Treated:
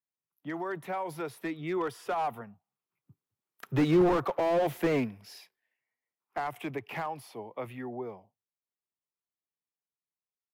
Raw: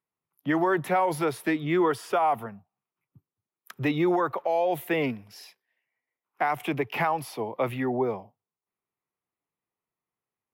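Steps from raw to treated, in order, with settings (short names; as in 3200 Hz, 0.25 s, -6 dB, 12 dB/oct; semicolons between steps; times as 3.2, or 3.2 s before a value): Doppler pass-by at 4.22, 7 m/s, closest 5.3 m; slew limiter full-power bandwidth 31 Hz; gain +2.5 dB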